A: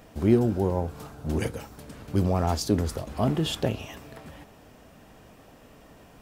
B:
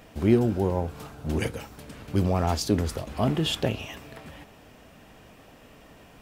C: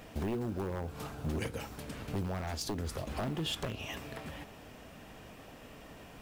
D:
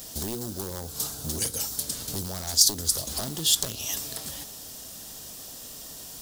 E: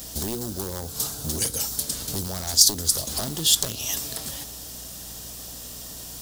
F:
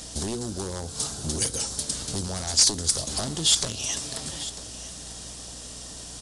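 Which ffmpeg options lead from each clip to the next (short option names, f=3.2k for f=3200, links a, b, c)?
-af "equalizer=f=2.6k:w=1.1:g=4.5"
-af "acompressor=threshold=-32dB:ratio=4,acrusher=bits=8:mode=log:mix=0:aa=0.000001,aeval=exprs='0.0398*(abs(mod(val(0)/0.0398+3,4)-2)-1)':c=same"
-af "aexciter=amount=11.7:drive=5.6:freq=3.7k"
-af "aeval=exprs='val(0)+0.00316*(sin(2*PI*60*n/s)+sin(2*PI*2*60*n/s)/2+sin(2*PI*3*60*n/s)/3+sin(2*PI*4*60*n/s)/4+sin(2*PI*5*60*n/s)/5)':c=same,volume=3dB"
-af "asoftclip=type=hard:threshold=-12.5dB,aecho=1:1:947:0.178,aresample=22050,aresample=44100"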